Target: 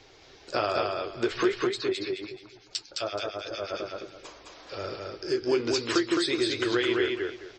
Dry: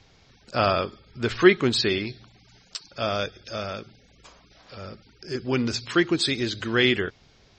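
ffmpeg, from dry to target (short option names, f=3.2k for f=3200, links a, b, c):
-filter_complex "[0:a]lowshelf=f=270:t=q:w=3:g=-7,acompressor=threshold=-28dB:ratio=6,asettb=1/sr,asplit=3[a][b][c];[a]atrim=end=1.674[d];[b]atrim=start=1.67:end=3.8,asetpts=PTS-STARTPTS,afade=t=in:d=0.004:c=qsin,afade=t=out:st=2.126:d=0.004:c=qsin,acrossover=split=1600[e][f];[e]aeval=exprs='val(0)*(1-1/2+1/2*cos(2*PI*8.7*n/s))':c=same[g];[f]aeval=exprs='val(0)*(1-1/2-1/2*cos(2*PI*8.7*n/s))':c=same[h];[g][h]amix=inputs=2:normalize=0[i];[c]atrim=start=3.796[j];[d][i]acrossfade=d=0.004:c1=hsin:c2=qsin[k];[k][j]acrossfade=d=0.004:c1=qsin:c2=hsin,flanger=delay=6.3:depth=7.7:regen=-50:speed=1.2:shape=triangular,aecho=1:1:213|426|639:0.708|0.17|0.0408,volume=7.5dB"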